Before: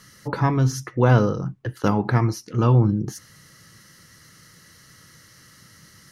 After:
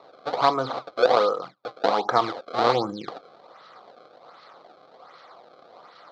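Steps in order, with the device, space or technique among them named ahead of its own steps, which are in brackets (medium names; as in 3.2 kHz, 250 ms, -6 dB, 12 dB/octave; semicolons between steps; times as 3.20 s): 0.87–2.09 s: high-pass 510 Hz -> 210 Hz 6 dB/octave; circuit-bent sampling toy (decimation with a swept rate 27×, swing 160% 1.3 Hz; cabinet simulation 500–4300 Hz, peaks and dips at 510 Hz +7 dB, 720 Hz +8 dB, 1.2 kHz +9 dB, 1.8 kHz -7 dB, 2.7 kHz -10 dB, 4.1 kHz +7 dB); trim +1.5 dB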